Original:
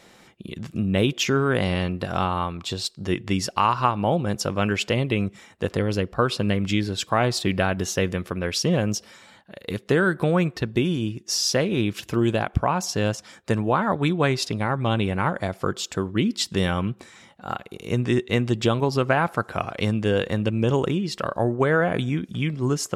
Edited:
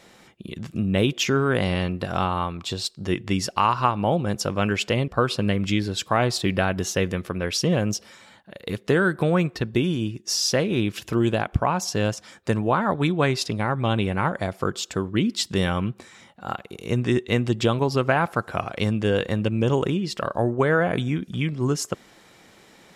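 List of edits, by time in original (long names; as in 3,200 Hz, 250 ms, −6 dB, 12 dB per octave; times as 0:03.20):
0:05.08–0:06.09: remove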